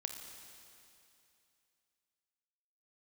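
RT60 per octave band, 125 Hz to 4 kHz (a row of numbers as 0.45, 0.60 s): 2.7, 2.7, 2.7, 2.7, 2.7, 2.7 s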